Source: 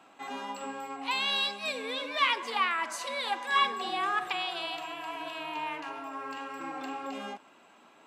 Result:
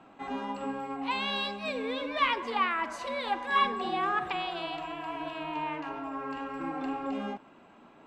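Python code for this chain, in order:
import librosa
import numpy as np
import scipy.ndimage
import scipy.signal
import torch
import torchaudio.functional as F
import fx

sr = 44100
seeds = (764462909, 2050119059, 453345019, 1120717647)

y = fx.riaa(x, sr, side='playback')
y = y * 10.0 ** (1.0 / 20.0)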